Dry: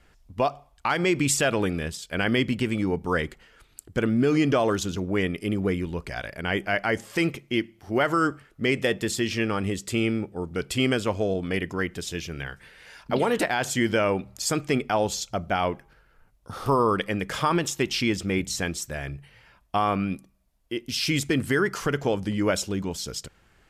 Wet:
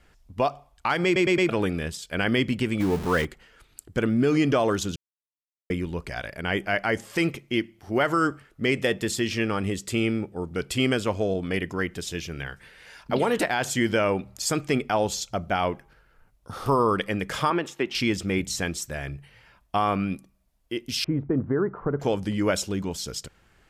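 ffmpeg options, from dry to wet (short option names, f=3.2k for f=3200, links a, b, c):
-filter_complex "[0:a]asettb=1/sr,asplit=3[a][b][c];[a]atrim=end=2.804[d];[b]atrim=start=2.8:end=3.25,asetpts=PTS-STARTPTS,afade=t=in:d=0.004:c=qsin,afade=t=out:st=0.446:d=0.004:c=qsin,aeval=exprs='val(0)+0.5*0.0355*sgn(val(0))':c=same[e];[c]atrim=start=3.246[f];[d][e]acrossfade=d=0.004:c1=hsin:c2=qsin[g];[g][f]acrossfade=d=0.004:c1=qsin:c2=hsin,asettb=1/sr,asplit=3[h][i][j];[h]atrim=end=17.504[k];[i]atrim=start=17.5:end=17.95,asetpts=PTS-STARTPTS,afade=t=in:d=0.004:c=qsin,afade=t=out:st=0.446:d=0.004:c=qsin,acrossover=split=210 3100:gain=0.178 1 0.178[l][m][n];[l][m][n]amix=inputs=3:normalize=0[o];[j]atrim=start=17.946[p];[k][o]acrossfade=d=0.004:c1=hsin:c2=qsin[q];[q][p]acrossfade=d=0.004:c1=qsin:c2=hsin,asettb=1/sr,asplit=3[r][s][t];[r]atrim=end=21.044[u];[s]atrim=start=21.04:end=22,asetpts=PTS-STARTPTS,afade=t=in:d=0.004:c=qsin,afade=t=out:st=0.956:d=0.004:c=qsin,lowpass=f=1.1k:w=0.5412,lowpass=f=1.1k:w=1.3066[v];[t]atrim=start=21.996[w];[u][v]acrossfade=d=0.004:c1=hsin:c2=qsin[x];[x][w]acrossfade=d=0.004:c1=qsin:c2=hsin,asplit=7[y][z][aa][ab][ac][ad][ae];[y]atrim=end=1.162[af];[z]atrim=start=1.048:end=1.162[ag];[aa]atrim=start=1.048:end=1.162[ah];[ab]atrim=start=1.048:end=1.162[ai];[ac]atrim=start=1.488:end=4.96,asetpts=PTS-STARTPTS,afade=t=out:st=3.468:d=0.004:c=hsin[aj];[ad]atrim=start=4.96:end=5.7,asetpts=PTS-STARTPTS,volume=0[ak];[ae]atrim=start=5.7,asetpts=PTS-STARTPTS,afade=t=in:d=0.004:c=hsin[al];[af][ag]acrossfade=d=0.004:c1=hsin:c2=hsin[am];[am][ah]acrossfade=d=0.004:c1=hsin:c2=hsin[an];[an][ai]acrossfade=d=0.004:c1=hsin:c2=hsin[ao];[aj][ak][al]concat=n=3:v=0:a=1[ap];[ao][ap]acrossfade=d=0.004:c1=hsin:c2=hsin"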